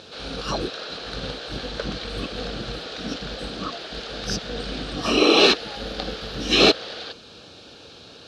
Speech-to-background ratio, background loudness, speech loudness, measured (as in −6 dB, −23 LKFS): 11.0 dB, −33.5 LKFS, −22.5 LKFS